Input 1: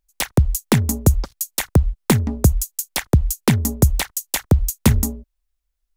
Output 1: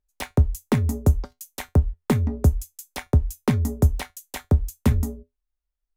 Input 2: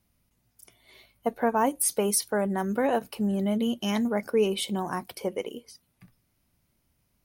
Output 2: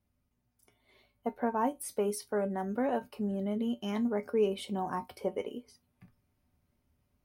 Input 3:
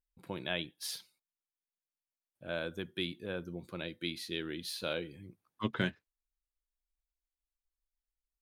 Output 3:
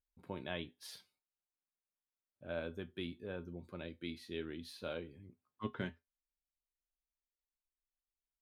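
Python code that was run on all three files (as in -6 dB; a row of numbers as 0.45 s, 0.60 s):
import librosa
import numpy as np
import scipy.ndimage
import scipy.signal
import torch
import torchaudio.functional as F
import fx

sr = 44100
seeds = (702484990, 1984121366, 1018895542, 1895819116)

y = fx.high_shelf(x, sr, hz=2400.0, db=-11.0)
y = fx.rider(y, sr, range_db=3, speed_s=2.0)
y = fx.comb_fb(y, sr, f0_hz=83.0, decay_s=0.16, harmonics='odd', damping=0.0, mix_pct=70)
y = F.gain(torch.from_numpy(y), 1.5).numpy()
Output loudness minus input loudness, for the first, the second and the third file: -4.0 LU, -6.5 LU, -6.5 LU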